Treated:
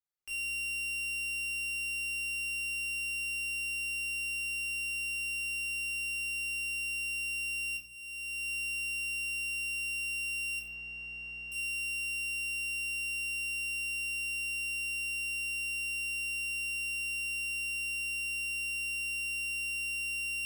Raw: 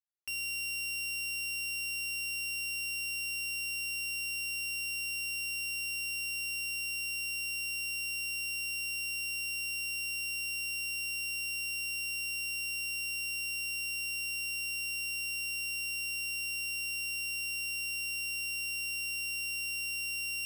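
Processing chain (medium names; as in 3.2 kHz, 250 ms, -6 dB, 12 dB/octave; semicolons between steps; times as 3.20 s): 7.77–8.49 s: fade in; 10.59–11.52 s: low-pass 2 kHz 12 dB/octave; simulated room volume 870 m³, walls furnished, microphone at 3.9 m; trim -6.5 dB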